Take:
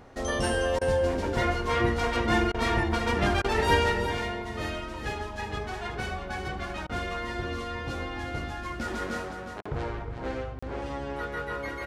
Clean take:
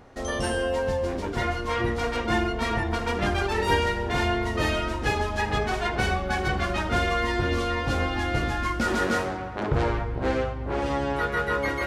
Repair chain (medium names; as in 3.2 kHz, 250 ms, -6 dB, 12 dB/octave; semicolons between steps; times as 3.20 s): interpolate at 9.62/10.59 s, 35 ms; interpolate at 0.79/2.52/3.42/6.87/9.61 s, 22 ms; inverse comb 362 ms -9 dB; trim 0 dB, from 4.06 s +8.5 dB